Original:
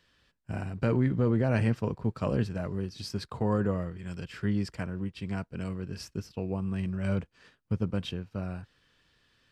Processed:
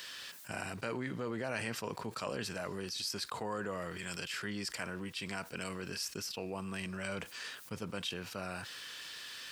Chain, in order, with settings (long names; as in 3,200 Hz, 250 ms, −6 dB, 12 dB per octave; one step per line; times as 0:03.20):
high-pass filter 1,200 Hz 6 dB per octave
high-shelf EQ 5,300 Hz +10.5 dB
envelope flattener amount 70%
level −3.5 dB